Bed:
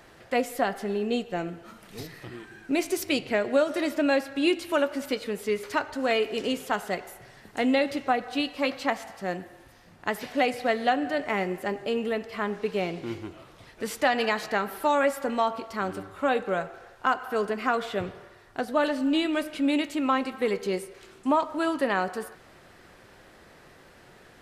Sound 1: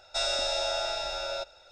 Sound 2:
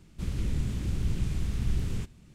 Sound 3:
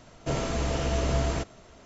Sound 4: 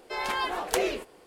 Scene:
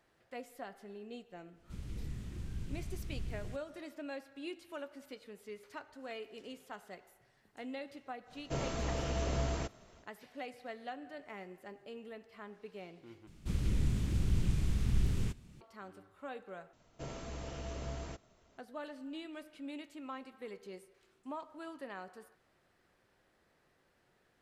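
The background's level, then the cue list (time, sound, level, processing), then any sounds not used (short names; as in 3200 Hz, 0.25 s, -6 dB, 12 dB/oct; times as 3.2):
bed -20 dB
1.51 add 2 -12.5 dB, fades 0.10 s
8.24 add 3 -8 dB, fades 0.10 s
13.27 replace with 2 -2 dB
16.73 replace with 3 -15.5 dB
not used: 1, 4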